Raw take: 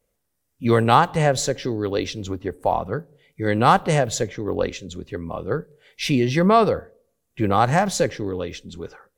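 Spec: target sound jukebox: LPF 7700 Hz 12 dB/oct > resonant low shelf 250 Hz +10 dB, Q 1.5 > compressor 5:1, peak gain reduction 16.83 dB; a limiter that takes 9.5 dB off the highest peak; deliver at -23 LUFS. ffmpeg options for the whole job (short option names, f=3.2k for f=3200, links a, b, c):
-af "alimiter=limit=-11dB:level=0:latency=1,lowpass=7.7k,lowshelf=f=250:t=q:w=1.5:g=10,acompressor=threshold=-25dB:ratio=5,volume=6.5dB"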